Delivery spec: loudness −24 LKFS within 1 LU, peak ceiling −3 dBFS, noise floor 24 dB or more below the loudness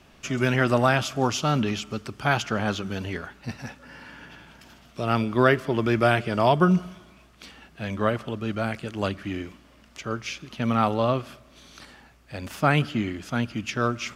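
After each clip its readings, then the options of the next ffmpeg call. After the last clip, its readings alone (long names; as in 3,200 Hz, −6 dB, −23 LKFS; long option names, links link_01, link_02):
integrated loudness −25.0 LKFS; sample peak −5.0 dBFS; target loudness −24.0 LKFS
→ -af "volume=1dB"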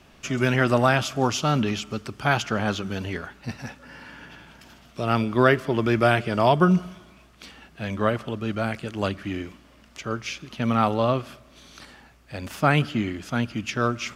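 integrated loudness −24.0 LKFS; sample peak −4.0 dBFS; background noise floor −53 dBFS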